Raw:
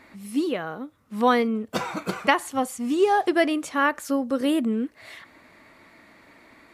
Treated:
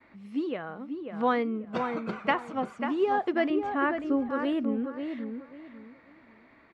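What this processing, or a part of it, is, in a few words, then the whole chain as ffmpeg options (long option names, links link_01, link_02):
hearing-loss simulation: -filter_complex "[0:a]asettb=1/sr,asplit=3[link_01][link_02][link_03];[link_01]atrim=end=3.504[link_04];[link_02]atrim=start=3.5:end=4.29,asetpts=PTS-STARTPTS,afade=type=in:duration=0.004:curve=qsin,afade=type=out:start_time=0.786:duration=0.004:curve=qsin,aemphasis=mode=reproduction:type=bsi[link_05];[link_03]atrim=start=4.286[link_06];[link_04][link_05]acrossfade=duration=0.004:curve1=hsin:curve2=qsin[link_07];[link_07][link_06]acrossfade=duration=0.004:curve1=qsin:curve2=hsin,lowpass=2800,asplit=2[link_08][link_09];[link_09]adelay=541,lowpass=frequency=2000:poles=1,volume=-6dB,asplit=2[link_10][link_11];[link_11]adelay=541,lowpass=frequency=2000:poles=1,volume=0.26,asplit=2[link_12][link_13];[link_13]adelay=541,lowpass=frequency=2000:poles=1,volume=0.26[link_14];[link_08][link_10][link_12][link_14]amix=inputs=4:normalize=0,agate=range=-33dB:threshold=-53dB:ratio=3:detection=peak,volume=-6dB"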